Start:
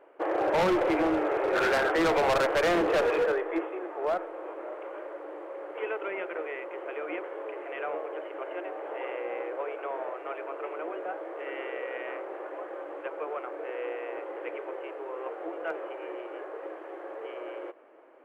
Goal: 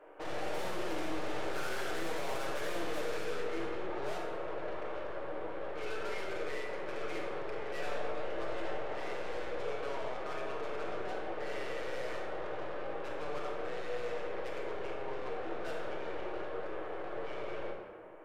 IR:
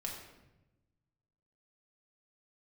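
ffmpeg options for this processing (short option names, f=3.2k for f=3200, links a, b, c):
-filter_complex "[0:a]highpass=f=200:p=1,aeval=exprs='(tanh(126*val(0)+0.3)-tanh(0.3))/126':c=same,asettb=1/sr,asplit=3[a][b][c];[a]atrim=end=7.734[d];[b]atrim=start=7.73:end=8.78,asetpts=PTS-STARTPTS,afade=t=in:d=0.004:c=qsin,afade=t=out:st=1.046:d=0.004:c=qsin,asplit=2[e][f];[f]adelay=18,volume=-4dB[g];[e][g]amix=inputs=2:normalize=0,atrim=end_sample=46305[h];[c]atrim=start=8.776[i];[d][h]acrossfade=d=0.004:c1=hsin:c2=qsin[j];[j][i]acrossfade=d=0.004:c1=qsin:c2=hsin[k];[1:a]atrim=start_sample=2205,afade=t=out:st=0.41:d=0.01,atrim=end_sample=18522,asetrate=29988,aresample=44100[l];[k][l]afir=irnorm=-1:irlink=0,volume=2dB"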